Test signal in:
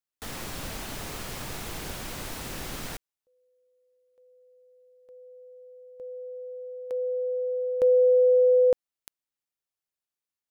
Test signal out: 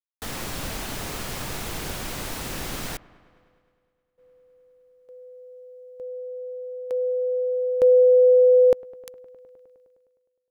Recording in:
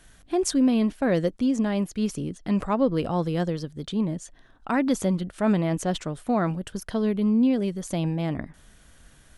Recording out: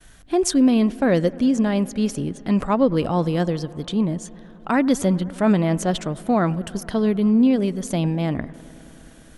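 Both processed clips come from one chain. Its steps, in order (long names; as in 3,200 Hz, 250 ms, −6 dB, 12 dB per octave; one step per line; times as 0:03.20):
delay with a low-pass on its return 103 ms, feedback 85%, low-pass 2,100 Hz, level −23 dB
downward expander −56 dBFS
level +4.5 dB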